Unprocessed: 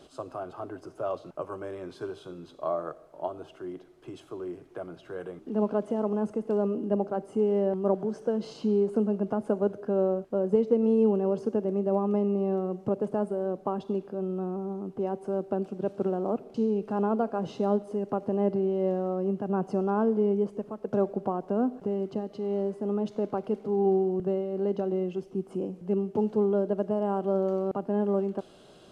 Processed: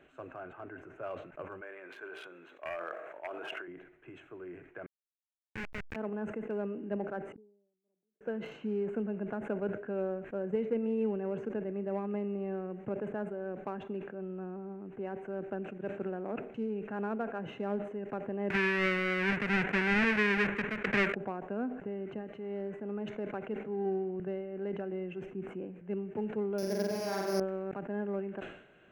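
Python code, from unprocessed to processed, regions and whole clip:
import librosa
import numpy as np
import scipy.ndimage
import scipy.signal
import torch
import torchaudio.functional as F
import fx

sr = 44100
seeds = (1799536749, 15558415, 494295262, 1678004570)

y = fx.chain(x, sr, fx.highpass(hz=460.0, slope=12),
    fx.clip_hard(threshold_db=-25.5),
    fx.sustainer(db_per_s=27.0), at=(1.61, 3.68))
y = fx.chain(y, sr, fx.schmitt(flips_db=-25.0),
    fx.resample_linear(factor=4), at=(4.86, 5.96))
y = fx.chain(y, sr, fx.ladder_bandpass(hz=310.0, resonance_pct=25),
    fx.gate_flip(shuts_db=-41.0, range_db=-37), at=(7.32, 8.21))
y = fx.chain(y, sr, fx.halfwave_hold(),
    fx.air_absorb(metres=140.0),
    fx.band_squash(depth_pct=40), at=(18.5, 21.15))
y = fx.chain(y, sr, fx.sample_sort(block=8),
    fx.room_flutter(wall_m=8.0, rt60_s=1.3), at=(26.58, 27.4))
y = fx.wiener(y, sr, points=9)
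y = fx.band_shelf(y, sr, hz=2000.0, db=14.5, octaves=1.1)
y = fx.sustainer(y, sr, db_per_s=84.0)
y = F.gain(torch.from_numpy(y), -9.0).numpy()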